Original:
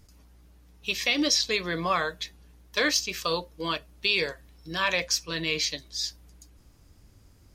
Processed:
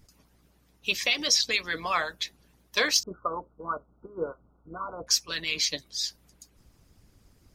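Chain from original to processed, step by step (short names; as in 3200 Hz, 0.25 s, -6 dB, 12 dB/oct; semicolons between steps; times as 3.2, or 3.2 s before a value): harmonic-percussive split harmonic -16 dB; 3.03–5.07 brick-wall FIR low-pass 1500 Hz; gain +3 dB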